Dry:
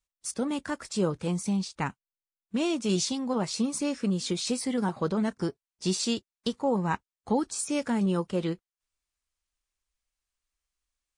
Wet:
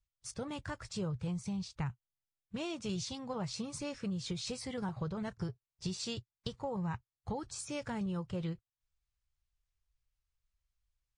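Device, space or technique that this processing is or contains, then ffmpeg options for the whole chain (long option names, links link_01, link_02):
jukebox: -af "lowpass=6800,lowshelf=frequency=170:width_type=q:width=3:gain=12,acompressor=threshold=-28dB:ratio=6,volume=-6dB"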